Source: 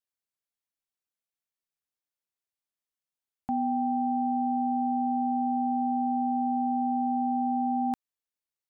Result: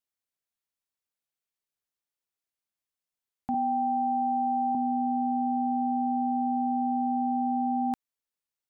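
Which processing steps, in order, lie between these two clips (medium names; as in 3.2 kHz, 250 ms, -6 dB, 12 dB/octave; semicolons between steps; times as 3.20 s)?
3.54–4.75 s: comb 1.6 ms, depth 88%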